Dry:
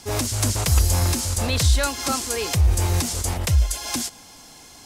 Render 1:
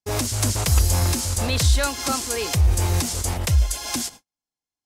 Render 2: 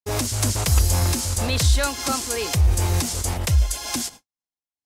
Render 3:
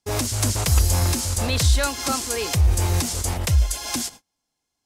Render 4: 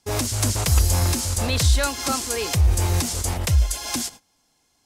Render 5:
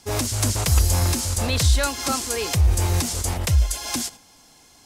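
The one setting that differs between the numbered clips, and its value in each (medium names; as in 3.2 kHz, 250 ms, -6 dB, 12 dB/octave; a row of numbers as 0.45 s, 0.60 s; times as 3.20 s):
gate, range: -48 dB, -60 dB, -34 dB, -21 dB, -7 dB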